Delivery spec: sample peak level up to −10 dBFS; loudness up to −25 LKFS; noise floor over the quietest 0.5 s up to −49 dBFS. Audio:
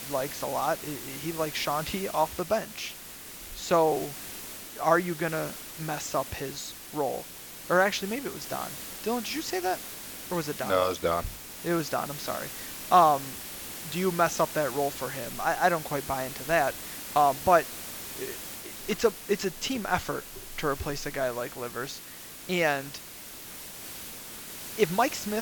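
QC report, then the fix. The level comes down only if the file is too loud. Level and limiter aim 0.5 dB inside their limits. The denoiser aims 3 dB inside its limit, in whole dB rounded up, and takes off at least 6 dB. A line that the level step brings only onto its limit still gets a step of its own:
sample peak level −6.5 dBFS: out of spec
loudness −29.0 LKFS: in spec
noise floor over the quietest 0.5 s −44 dBFS: out of spec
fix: broadband denoise 8 dB, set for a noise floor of −44 dBFS
brickwall limiter −10.5 dBFS

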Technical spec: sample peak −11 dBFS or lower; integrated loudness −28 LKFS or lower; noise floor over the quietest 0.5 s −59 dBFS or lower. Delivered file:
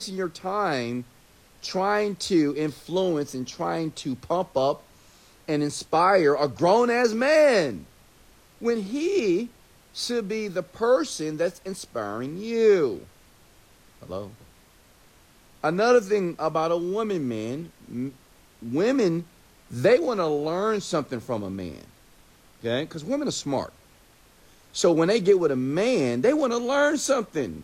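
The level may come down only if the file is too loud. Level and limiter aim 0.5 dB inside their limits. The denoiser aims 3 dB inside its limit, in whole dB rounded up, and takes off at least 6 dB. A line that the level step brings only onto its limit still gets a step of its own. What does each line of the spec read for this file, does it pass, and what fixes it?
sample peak −8.0 dBFS: out of spec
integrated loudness −24.5 LKFS: out of spec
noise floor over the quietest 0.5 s −56 dBFS: out of spec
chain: level −4 dB

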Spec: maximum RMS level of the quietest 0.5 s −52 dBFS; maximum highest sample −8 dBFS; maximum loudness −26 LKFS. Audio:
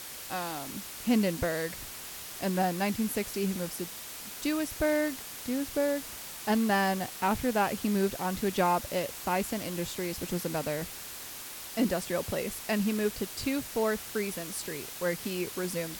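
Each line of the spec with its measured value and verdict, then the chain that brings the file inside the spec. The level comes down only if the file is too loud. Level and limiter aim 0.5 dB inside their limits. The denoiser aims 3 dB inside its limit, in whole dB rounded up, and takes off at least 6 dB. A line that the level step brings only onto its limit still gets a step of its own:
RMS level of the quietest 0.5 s −42 dBFS: out of spec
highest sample −13.5 dBFS: in spec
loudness −31.5 LKFS: in spec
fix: broadband denoise 13 dB, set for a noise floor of −42 dBFS

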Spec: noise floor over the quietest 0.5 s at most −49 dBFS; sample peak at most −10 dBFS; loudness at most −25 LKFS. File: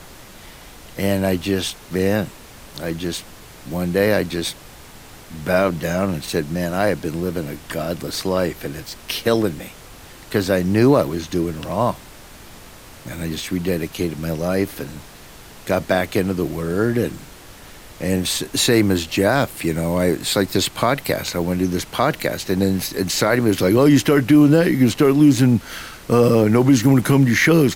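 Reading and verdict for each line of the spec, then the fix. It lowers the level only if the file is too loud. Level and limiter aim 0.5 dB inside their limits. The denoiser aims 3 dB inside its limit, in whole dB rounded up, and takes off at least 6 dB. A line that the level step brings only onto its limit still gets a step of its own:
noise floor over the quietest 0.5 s −41 dBFS: out of spec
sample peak −4.5 dBFS: out of spec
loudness −19.0 LKFS: out of spec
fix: broadband denoise 6 dB, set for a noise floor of −41 dBFS
level −6.5 dB

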